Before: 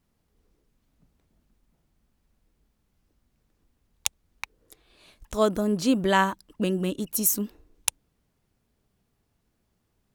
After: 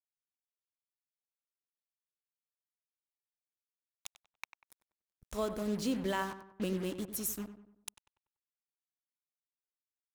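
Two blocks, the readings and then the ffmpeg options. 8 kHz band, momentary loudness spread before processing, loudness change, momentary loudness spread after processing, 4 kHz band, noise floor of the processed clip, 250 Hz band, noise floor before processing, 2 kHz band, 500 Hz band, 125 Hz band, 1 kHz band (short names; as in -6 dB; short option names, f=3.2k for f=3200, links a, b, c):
-14.0 dB, 16 LU, -10.5 dB, 17 LU, -12.0 dB, under -85 dBFS, -10.5 dB, -74 dBFS, -13.0 dB, -10.5 dB, -10.0 dB, -13.5 dB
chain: -filter_complex "[0:a]alimiter=limit=-15.5dB:level=0:latency=1:release=452,aeval=exprs='val(0)+0.00282*(sin(2*PI*50*n/s)+sin(2*PI*2*50*n/s)/2+sin(2*PI*3*50*n/s)/3+sin(2*PI*4*50*n/s)/4+sin(2*PI*5*50*n/s)/5)':c=same,acrusher=bits=5:mix=0:aa=0.5,asplit=2[a][b];[b]adelay=96,lowpass=f=2k:p=1,volume=-10.5dB,asplit=2[c][d];[d]adelay=96,lowpass=f=2k:p=1,volume=0.45,asplit=2[e][f];[f]adelay=96,lowpass=f=2k:p=1,volume=0.45,asplit=2[g][h];[h]adelay=96,lowpass=f=2k:p=1,volume=0.45,asplit=2[i][j];[j]adelay=96,lowpass=f=2k:p=1,volume=0.45[k];[c][e][g][i][k]amix=inputs=5:normalize=0[l];[a][l]amix=inputs=2:normalize=0,volume=-8.5dB"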